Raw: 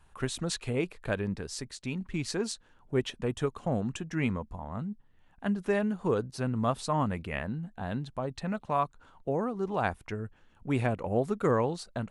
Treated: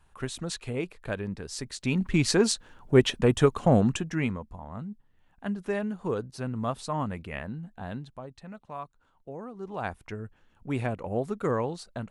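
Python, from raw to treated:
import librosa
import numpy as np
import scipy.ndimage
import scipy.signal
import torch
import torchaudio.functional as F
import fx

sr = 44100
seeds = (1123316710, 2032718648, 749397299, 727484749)

y = fx.gain(x, sr, db=fx.line((1.38, -1.5), (2.01, 9.5), (3.84, 9.5), (4.38, -2.0), (7.89, -2.0), (8.38, -10.5), (9.33, -10.5), (10.02, -1.5)))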